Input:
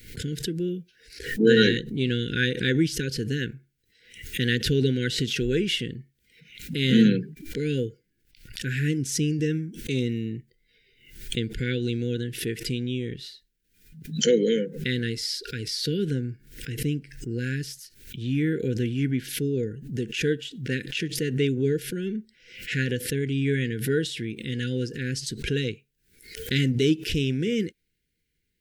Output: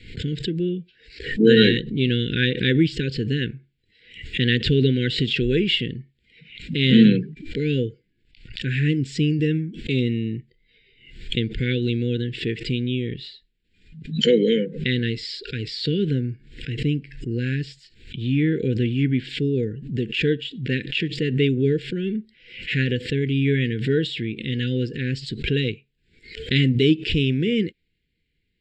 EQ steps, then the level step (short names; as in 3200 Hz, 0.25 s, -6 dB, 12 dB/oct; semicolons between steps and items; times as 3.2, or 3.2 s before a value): elliptic low-pass 7300 Hz, stop band 40 dB; fixed phaser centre 2700 Hz, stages 4; +6.0 dB